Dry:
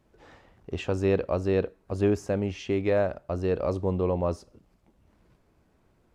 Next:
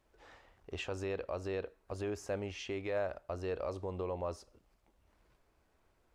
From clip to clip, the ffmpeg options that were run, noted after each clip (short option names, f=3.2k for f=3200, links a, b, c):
-af "alimiter=limit=-20.5dB:level=0:latency=1:release=135,equalizer=f=170:w=0.59:g=-12,volume=-3dB"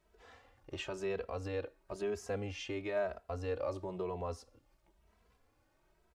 -filter_complex "[0:a]asplit=2[a][b];[b]adelay=2.7,afreqshift=1[c];[a][c]amix=inputs=2:normalize=1,volume=3dB"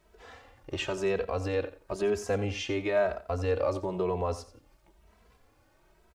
-af "aecho=1:1:88|176:0.188|0.0339,volume=8.5dB"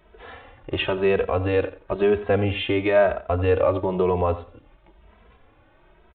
-af "aresample=8000,aresample=44100,volume=8.5dB"